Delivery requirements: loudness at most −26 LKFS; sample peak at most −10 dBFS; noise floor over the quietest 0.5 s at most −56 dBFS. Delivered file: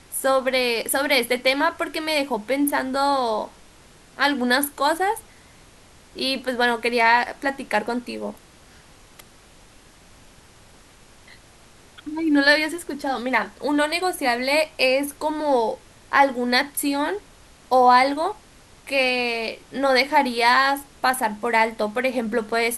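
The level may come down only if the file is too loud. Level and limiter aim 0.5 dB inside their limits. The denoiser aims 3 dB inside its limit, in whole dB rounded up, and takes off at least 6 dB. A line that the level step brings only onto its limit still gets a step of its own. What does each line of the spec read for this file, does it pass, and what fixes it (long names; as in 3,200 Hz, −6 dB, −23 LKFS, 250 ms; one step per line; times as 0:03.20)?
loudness −21.0 LKFS: out of spec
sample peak −4.0 dBFS: out of spec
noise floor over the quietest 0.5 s −50 dBFS: out of spec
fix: broadband denoise 6 dB, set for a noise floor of −50 dBFS
level −5.5 dB
brickwall limiter −10.5 dBFS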